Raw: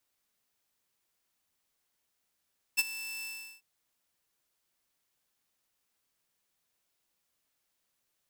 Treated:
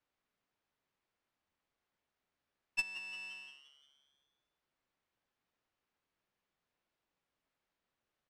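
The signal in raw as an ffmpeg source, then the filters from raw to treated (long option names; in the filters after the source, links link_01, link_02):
-f lavfi -i "aevalsrc='0.119*(2*mod(2650*t,1)-1)':duration=0.843:sample_rate=44100,afade=type=in:duration=0.023,afade=type=out:start_time=0.023:duration=0.03:silence=0.15,afade=type=out:start_time=0.47:duration=0.373"
-filter_complex "[0:a]asplit=2[link_01][link_02];[link_02]asplit=6[link_03][link_04][link_05][link_06][link_07][link_08];[link_03]adelay=174,afreqshift=140,volume=-13dB[link_09];[link_04]adelay=348,afreqshift=280,volume=-18dB[link_10];[link_05]adelay=522,afreqshift=420,volume=-23.1dB[link_11];[link_06]adelay=696,afreqshift=560,volume=-28.1dB[link_12];[link_07]adelay=870,afreqshift=700,volume=-33.1dB[link_13];[link_08]adelay=1044,afreqshift=840,volume=-38.2dB[link_14];[link_09][link_10][link_11][link_12][link_13][link_14]amix=inputs=6:normalize=0[link_15];[link_01][link_15]amix=inputs=2:normalize=0,adynamicsmooth=sensitivity=1:basefreq=2900"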